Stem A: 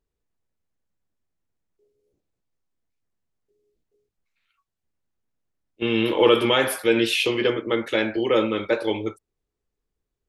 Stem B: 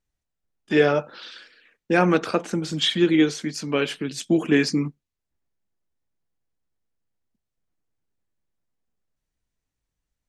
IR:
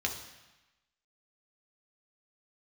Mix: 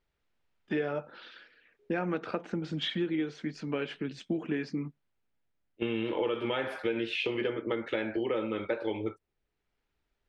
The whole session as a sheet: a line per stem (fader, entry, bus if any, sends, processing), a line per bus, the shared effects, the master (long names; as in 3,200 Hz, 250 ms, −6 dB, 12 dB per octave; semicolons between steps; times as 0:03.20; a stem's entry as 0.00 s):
−2.0 dB, 0.00 s, no send, no processing
−5.5 dB, 0.00 s, no send, bit-depth reduction 12 bits, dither triangular; automatic ducking −10 dB, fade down 1.70 s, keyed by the first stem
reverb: not used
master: low-pass filter 2,700 Hz 12 dB per octave; notch filter 1,100 Hz, Q 14; downward compressor 6 to 1, threshold −28 dBFS, peak gain reduction 14 dB